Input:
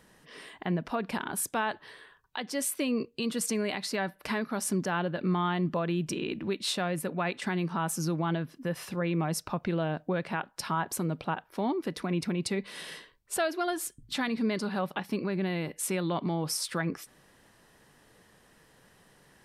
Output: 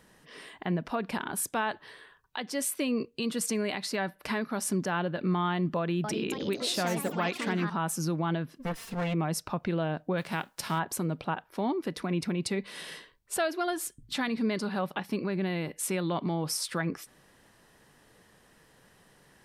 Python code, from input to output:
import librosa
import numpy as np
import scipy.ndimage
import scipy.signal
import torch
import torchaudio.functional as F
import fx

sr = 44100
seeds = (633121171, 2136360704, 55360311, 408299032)

y = fx.echo_pitch(x, sr, ms=280, semitones=4, count=3, db_per_echo=-6.0, at=(5.76, 7.85))
y = fx.lower_of_two(y, sr, delay_ms=4.4, at=(8.59, 9.13), fade=0.02)
y = fx.envelope_flatten(y, sr, power=0.6, at=(10.17, 10.78), fade=0.02)